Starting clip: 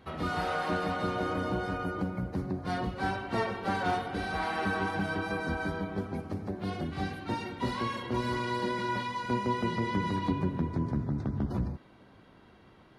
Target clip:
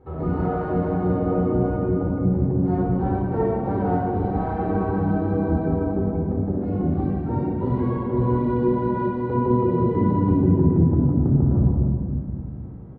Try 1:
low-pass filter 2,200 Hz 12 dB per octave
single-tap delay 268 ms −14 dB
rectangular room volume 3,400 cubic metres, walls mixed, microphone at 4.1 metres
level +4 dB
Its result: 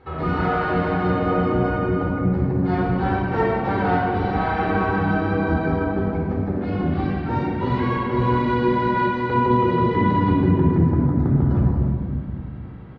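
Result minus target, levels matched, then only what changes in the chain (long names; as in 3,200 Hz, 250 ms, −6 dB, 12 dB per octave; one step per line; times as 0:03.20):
2,000 Hz band +13.0 dB
change: low-pass filter 660 Hz 12 dB per octave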